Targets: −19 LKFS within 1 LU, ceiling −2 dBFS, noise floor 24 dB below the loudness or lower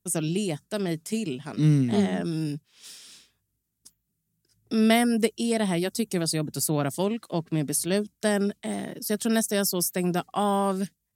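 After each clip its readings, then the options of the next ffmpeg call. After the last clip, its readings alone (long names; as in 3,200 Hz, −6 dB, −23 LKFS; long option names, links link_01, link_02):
integrated loudness −26.0 LKFS; sample peak −9.5 dBFS; target loudness −19.0 LKFS
→ -af "volume=7dB"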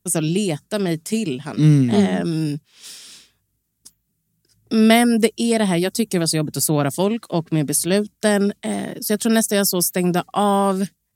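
integrated loudness −19.0 LKFS; sample peak −2.5 dBFS; background noise floor −72 dBFS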